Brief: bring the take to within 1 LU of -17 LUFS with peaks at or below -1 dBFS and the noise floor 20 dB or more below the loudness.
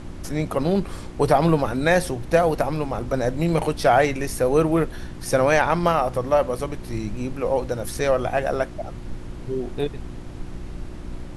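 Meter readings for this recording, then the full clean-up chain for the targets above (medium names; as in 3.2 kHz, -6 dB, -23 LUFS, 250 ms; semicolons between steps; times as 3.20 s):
hum 60 Hz; highest harmonic 360 Hz; hum level -37 dBFS; noise floor -36 dBFS; noise floor target -43 dBFS; loudness -22.5 LUFS; peak level -4.5 dBFS; loudness target -17.0 LUFS
-> de-hum 60 Hz, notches 6; noise print and reduce 7 dB; trim +5.5 dB; peak limiter -1 dBFS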